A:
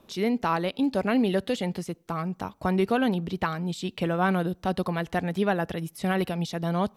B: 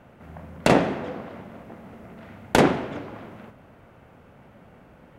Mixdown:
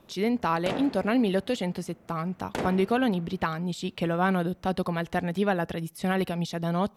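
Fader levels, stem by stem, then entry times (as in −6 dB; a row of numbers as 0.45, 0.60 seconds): −0.5, −14.0 decibels; 0.00, 0.00 seconds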